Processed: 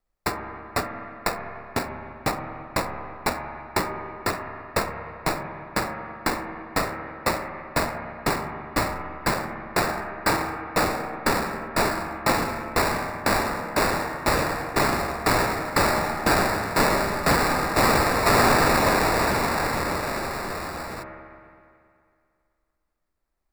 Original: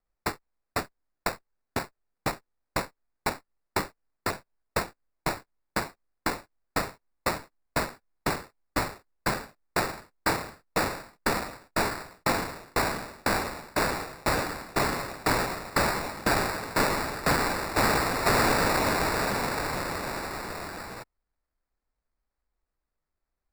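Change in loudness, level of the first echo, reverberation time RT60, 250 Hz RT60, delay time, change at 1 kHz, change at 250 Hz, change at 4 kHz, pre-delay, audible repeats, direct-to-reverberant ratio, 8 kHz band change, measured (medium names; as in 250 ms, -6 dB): +4.5 dB, no echo, 2.3 s, 2.3 s, no echo, +5.5 dB, +5.0 dB, +3.5 dB, 13 ms, no echo, 4.0 dB, +3.5 dB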